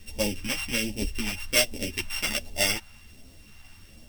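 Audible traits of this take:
a buzz of ramps at a fixed pitch in blocks of 16 samples
phaser sweep stages 2, 1.3 Hz, lowest notch 400–1,300 Hz
a quantiser's noise floor 10 bits, dither none
a shimmering, thickened sound

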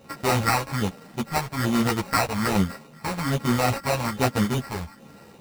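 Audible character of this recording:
a buzz of ramps at a fixed pitch in blocks of 32 samples
phaser sweep stages 4, 1.2 Hz, lowest notch 260–4,600 Hz
aliases and images of a low sample rate 3,300 Hz, jitter 0%
a shimmering, thickened sound

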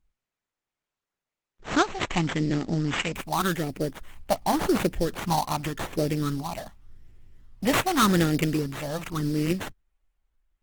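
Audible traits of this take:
phaser sweep stages 6, 0.87 Hz, lowest notch 380–1,100 Hz
aliases and images of a low sample rate 5,100 Hz, jitter 20%
Opus

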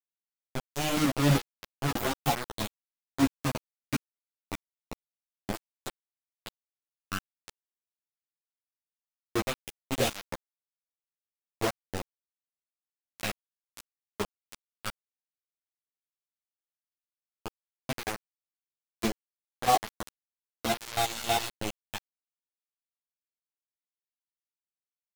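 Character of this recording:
phaser sweep stages 8, 0.11 Hz, lowest notch 710–1,700 Hz
chopped level 3.1 Hz, depth 60%, duty 25%
a quantiser's noise floor 6 bits, dither none
a shimmering, thickened sound

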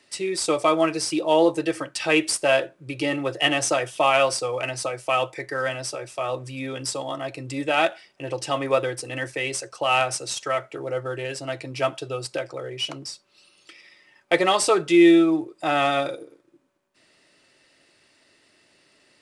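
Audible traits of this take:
background noise floor −61 dBFS
spectral slope −3.5 dB per octave

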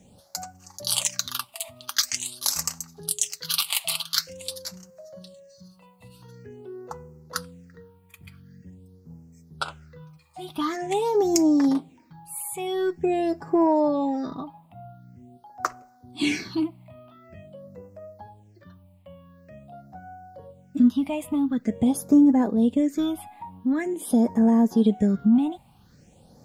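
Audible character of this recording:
a quantiser's noise floor 12 bits, dither none
phaser sweep stages 6, 0.46 Hz, lowest notch 410–3,400 Hz

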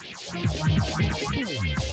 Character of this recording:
a quantiser's noise floor 6 bits, dither triangular
phaser sweep stages 4, 3.1 Hz, lowest notch 170–1,400 Hz
Speex

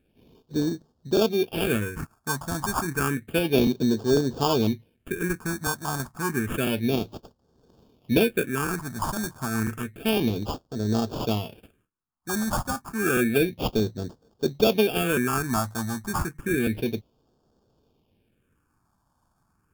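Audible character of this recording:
aliases and images of a low sample rate 2,000 Hz, jitter 0%
phaser sweep stages 4, 0.3 Hz, lowest notch 420–2,300 Hz
Ogg Vorbis

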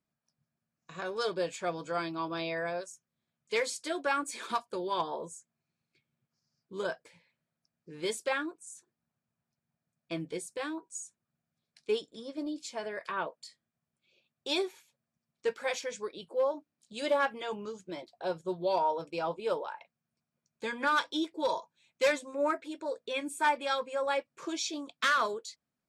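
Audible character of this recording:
background noise floor −89 dBFS
spectral slope −3.0 dB per octave

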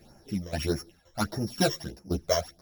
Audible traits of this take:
a buzz of ramps at a fixed pitch in blocks of 8 samples
phaser sweep stages 12, 1.6 Hz, lowest notch 240–3,600 Hz
tremolo saw down 1.9 Hz, depth 80%
a shimmering, thickened sound

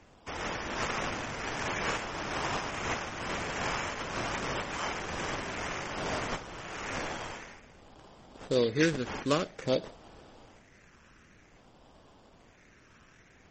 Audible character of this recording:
a quantiser's noise floor 12 bits, dither none
phaser sweep stages 8, 0.52 Hz, lowest notch 750–2,300 Hz
aliases and images of a low sample rate 4,100 Hz, jitter 20%
MP3

